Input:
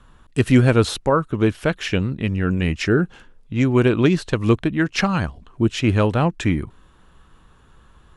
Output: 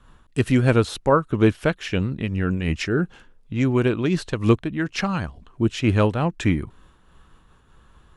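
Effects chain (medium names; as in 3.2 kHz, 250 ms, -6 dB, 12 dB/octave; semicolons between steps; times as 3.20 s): random flutter of the level, depth 65%; trim +1.5 dB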